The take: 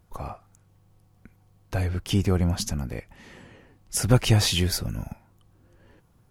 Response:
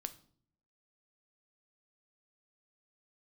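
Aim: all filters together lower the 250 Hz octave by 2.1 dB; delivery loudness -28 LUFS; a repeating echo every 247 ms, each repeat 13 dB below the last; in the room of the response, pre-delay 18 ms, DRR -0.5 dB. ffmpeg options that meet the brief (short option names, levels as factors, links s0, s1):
-filter_complex "[0:a]equalizer=f=250:t=o:g=-3,aecho=1:1:247|494|741:0.224|0.0493|0.0108,asplit=2[s0][s1];[1:a]atrim=start_sample=2205,adelay=18[s2];[s1][s2]afir=irnorm=-1:irlink=0,volume=1.41[s3];[s0][s3]amix=inputs=2:normalize=0,volume=0.473"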